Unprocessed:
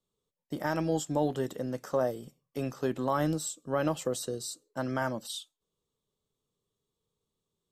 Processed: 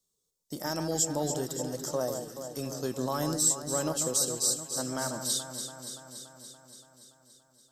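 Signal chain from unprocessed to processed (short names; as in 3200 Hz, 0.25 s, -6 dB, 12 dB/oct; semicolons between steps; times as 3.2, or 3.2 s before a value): resonant high shelf 3800 Hz +13 dB, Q 1.5; echo with dull and thin repeats by turns 0.143 s, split 1800 Hz, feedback 82%, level -7 dB; gain -3 dB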